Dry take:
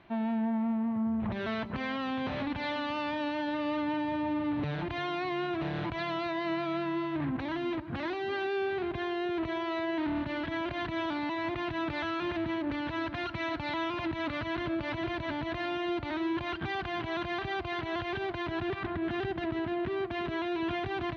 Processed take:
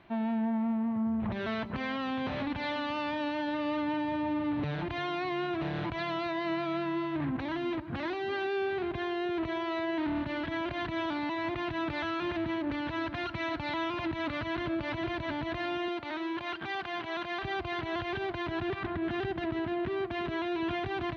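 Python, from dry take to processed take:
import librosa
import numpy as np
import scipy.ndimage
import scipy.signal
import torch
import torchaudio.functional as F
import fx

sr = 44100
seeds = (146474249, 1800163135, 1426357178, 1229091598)

y = fx.highpass(x, sr, hz=410.0, slope=6, at=(15.88, 17.43))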